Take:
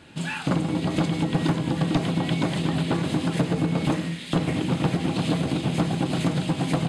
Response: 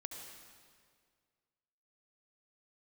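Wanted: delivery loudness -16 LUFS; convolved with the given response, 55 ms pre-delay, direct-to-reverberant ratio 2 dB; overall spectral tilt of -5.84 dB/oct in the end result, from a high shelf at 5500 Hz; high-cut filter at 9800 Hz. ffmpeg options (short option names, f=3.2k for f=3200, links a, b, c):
-filter_complex "[0:a]lowpass=9.8k,highshelf=f=5.5k:g=4,asplit=2[a][b];[1:a]atrim=start_sample=2205,adelay=55[c];[b][c]afir=irnorm=-1:irlink=0,volume=0.5dB[d];[a][d]amix=inputs=2:normalize=0,volume=6.5dB"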